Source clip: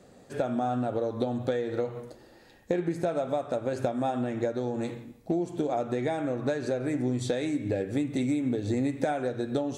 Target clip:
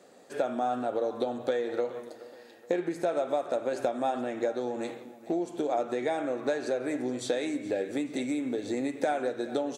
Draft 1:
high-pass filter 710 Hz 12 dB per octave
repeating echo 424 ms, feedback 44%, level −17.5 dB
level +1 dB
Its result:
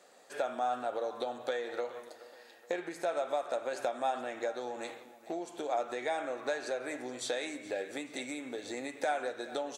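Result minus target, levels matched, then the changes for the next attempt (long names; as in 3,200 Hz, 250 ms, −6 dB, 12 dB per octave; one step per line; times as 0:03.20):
250 Hz band −6.0 dB
change: high-pass filter 330 Hz 12 dB per octave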